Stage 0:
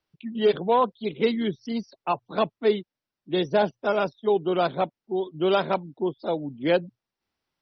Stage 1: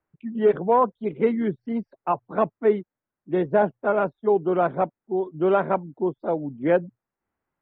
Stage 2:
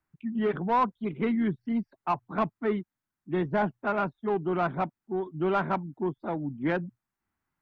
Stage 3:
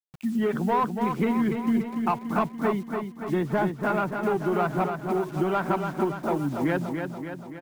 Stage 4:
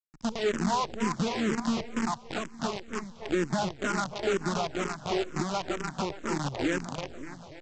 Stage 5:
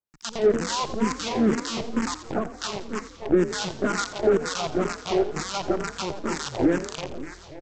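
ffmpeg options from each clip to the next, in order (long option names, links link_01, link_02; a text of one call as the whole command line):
ffmpeg -i in.wav -af "lowpass=frequency=1900:width=0.5412,lowpass=frequency=1900:width=1.3066,volume=2dB" out.wav
ffmpeg -i in.wav -filter_complex "[0:a]asplit=2[link_01][link_02];[link_02]asoftclip=type=tanh:threshold=-19.5dB,volume=-3.5dB[link_03];[link_01][link_03]amix=inputs=2:normalize=0,equalizer=frequency=510:width=1.5:gain=-13,volume=-3dB" out.wav
ffmpeg -i in.wav -filter_complex "[0:a]acrusher=bits=8:mix=0:aa=0.000001,acompressor=threshold=-32dB:ratio=2.5,asplit=2[link_01][link_02];[link_02]aecho=0:1:287|574|861|1148|1435|1722|2009|2296:0.501|0.296|0.174|0.103|0.0607|0.0358|0.0211|0.0125[link_03];[link_01][link_03]amix=inputs=2:normalize=0,volume=7.5dB" out.wav
ffmpeg -i in.wav -filter_complex "[0:a]aresample=16000,acrusher=bits=5:dc=4:mix=0:aa=0.000001,aresample=44100,alimiter=limit=-17dB:level=0:latency=1:release=422,asplit=2[link_01][link_02];[link_02]afreqshift=-2.1[link_03];[link_01][link_03]amix=inputs=2:normalize=1" out.wav
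ffmpeg -i in.wav -filter_complex "[0:a]acrossover=split=1300[link_01][link_02];[link_01]aeval=exprs='val(0)*(1-1/2+1/2*cos(2*PI*2.1*n/s))':channel_layout=same[link_03];[link_02]aeval=exprs='val(0)*(1-1/2-1/2*cos(2*PI*2.1*n/s))':channel_layout=same[link_04];[link_03][link_04]amix=inputs=2:normalize=0,asplit=5[link_05][link_06][link_07][link_08][link_09];[link_06]adelay=85,afreqshift=39,volume=-14dB[link_10];[link_07]adelay=170,afreqshift=78,volume=-20.9dB[link_11];[link_08]adelay=255,afreqshift=117,volume=-27.9dB[link_12];[link_09]adelay=340,afreqshift=156,volume=-34.8dB[link_13];[link_05][link_10][link_11][link_12][link_13]amix=inputs=5:normalize=0,volume=9dB" out.wav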